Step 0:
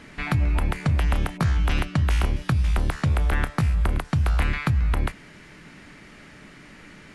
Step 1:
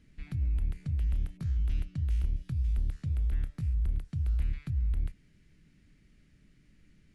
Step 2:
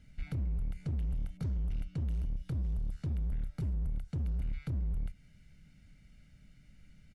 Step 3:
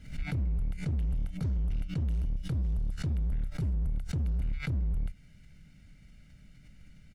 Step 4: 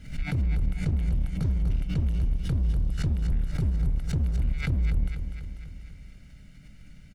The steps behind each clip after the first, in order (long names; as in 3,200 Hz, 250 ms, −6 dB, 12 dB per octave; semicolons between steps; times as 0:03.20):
guitar amp tone stack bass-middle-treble 10-0-1
comb filter 1.4 ms, depth 69%; downward compressor 3 to 1, threshold −29 dBFS, peak gain reduction 7.5 dB; gain into a clipping stage and back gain 30.5 dB
background raised ahead of every attack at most 110 dB per second; level +3.5 dB
repeating echo 246 ms, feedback 60%, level −9 dB; level +4.5 dB